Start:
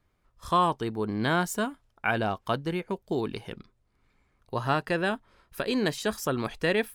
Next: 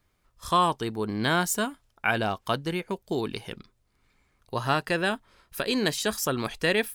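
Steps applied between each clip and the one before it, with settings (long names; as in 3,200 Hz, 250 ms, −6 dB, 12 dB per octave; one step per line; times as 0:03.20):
high-shelf EQ 2,600 Hz +8 dB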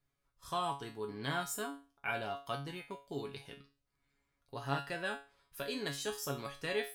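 tuned comb filter 140 Hz, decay 0.33 s, harmonics all, mix 90%
level −1.5 dB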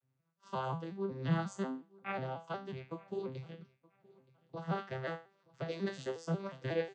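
vocoder with an arpeggio as carrier major triad, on C3, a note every 181 ms
repeating echo 922 ms, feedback 25%, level −24 dB
level +2 dB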